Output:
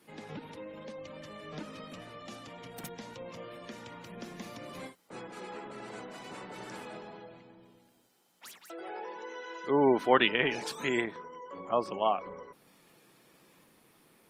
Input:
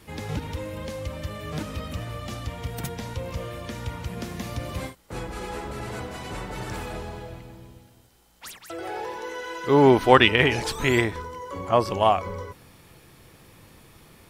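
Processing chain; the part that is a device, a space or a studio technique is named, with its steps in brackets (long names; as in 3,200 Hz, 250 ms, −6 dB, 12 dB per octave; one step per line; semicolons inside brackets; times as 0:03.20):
noise-suppressed video call (high-pass filter 170 Hz 24 dB per octave; gate on every frequency bin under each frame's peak −30 dB strong; level −8.5 dB; Opus 24 kbit/s 48,000 Hz)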